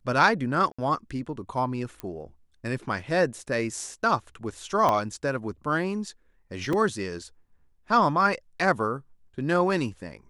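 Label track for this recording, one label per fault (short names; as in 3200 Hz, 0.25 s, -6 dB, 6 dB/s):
0.720000	0.790000	gap 65 ms
2.000000	2.000000	pop -20 dBFS
4.890000	4.890000	pop -11 dBFS
6.730000	6.730000	gap 2.4 ms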